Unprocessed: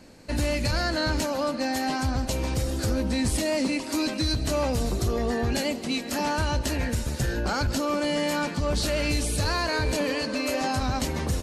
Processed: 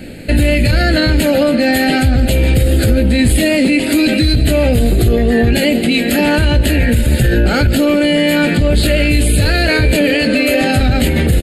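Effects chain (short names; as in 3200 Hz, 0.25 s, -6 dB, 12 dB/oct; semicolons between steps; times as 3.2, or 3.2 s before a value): fixed phaser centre 2500 Hz, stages 4; doubler 17 ms -11 dB; maximiser +24.5 dB; gain -3.5 dB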